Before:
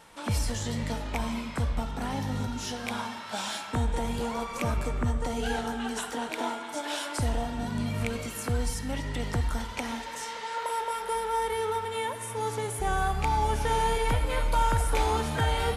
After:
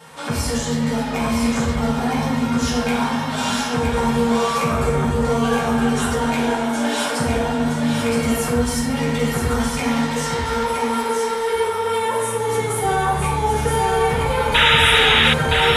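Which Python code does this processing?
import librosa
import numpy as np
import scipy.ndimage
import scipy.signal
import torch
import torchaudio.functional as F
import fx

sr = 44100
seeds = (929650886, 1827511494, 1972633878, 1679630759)

p1 = scipy.signal.sosfilt(scipy.signal.butter(2, 100.0, 'highpass', fs=sr, output='sos'), x)
p2 = fx.over_compress(p1, sr, threshold_db=-35.0, ratio=-1.0)
p3 = p1 + (p2 * librosa.db_to_amplitude(-1.5))
p4 = fx.rev_fdn(p3, sr, rt60_s=1.0, lf_ratio=1.0, hf_ratio=0.55, size_ms=38.0, drr_db=-8.0)
p5 = fx.dmg_crackle(p4, sr, seeds[0], per_s=48.0, level_db=-34.0, at=(8.71, 9.76), fade=0.02)
p6 = fx.spec_paint(p5, sr, seeds[1], shape='noise', start_s=14.54, length_s=0.8, low_hz=1200.0, high_hz=3900.0, level_db=-12.0)
p7 = p6 + fx.echo_single(p6, sr, ms=967, db=-4.5, dry=0)
y = p7 * librosa.db_to_amplitude(-3.0)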